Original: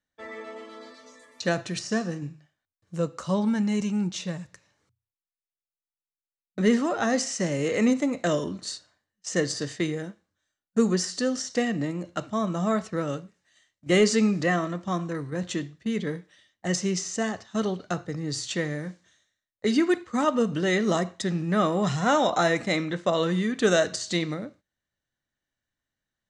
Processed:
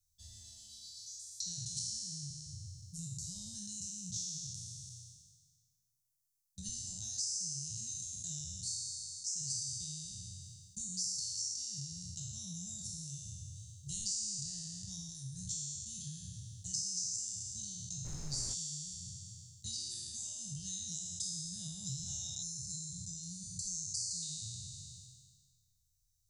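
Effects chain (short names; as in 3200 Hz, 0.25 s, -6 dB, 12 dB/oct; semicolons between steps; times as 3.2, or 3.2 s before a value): spectral trails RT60 1.59 s; inverse Chebyshev band-stop 250–2300 Hz, stop band 50 dB; 22.43–24.22 spectral gain 210–4100 Hz -18 dB; compressor 2.5:1, threshold -56 dBFS, peak gain reduction 20 dB; flange 1.8 Hz, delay 7.8 ms, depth 2.7 ms, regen -71%; 18.04–18.53 added noise brown -59 dBFS; gain +15 dB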